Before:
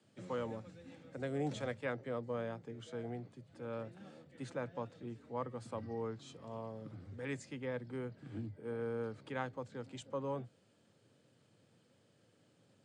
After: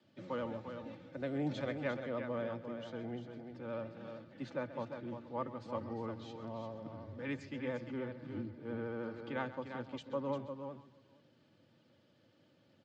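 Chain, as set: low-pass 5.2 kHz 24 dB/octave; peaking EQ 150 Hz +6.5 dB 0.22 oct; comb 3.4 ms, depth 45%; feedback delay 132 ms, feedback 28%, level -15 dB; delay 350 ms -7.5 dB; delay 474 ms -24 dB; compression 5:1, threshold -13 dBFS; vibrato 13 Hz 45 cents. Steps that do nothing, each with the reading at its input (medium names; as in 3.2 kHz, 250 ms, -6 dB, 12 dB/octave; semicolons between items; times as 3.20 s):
compression, threshold -13 dBFS: peak at its input -24.5 dBFS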